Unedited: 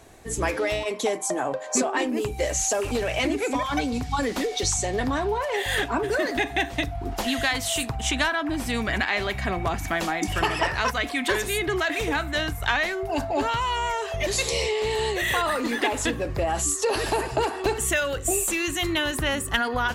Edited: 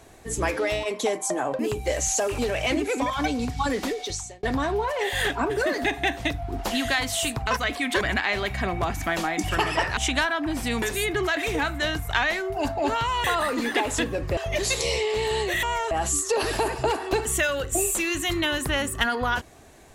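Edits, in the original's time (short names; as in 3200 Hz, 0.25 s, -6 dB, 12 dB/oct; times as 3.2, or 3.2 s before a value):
1.59–2.12 cut
4.31–4.96 fade out
8–8.85 swap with 10.81–11.35
13.77–14.05 swap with 15.31–16.44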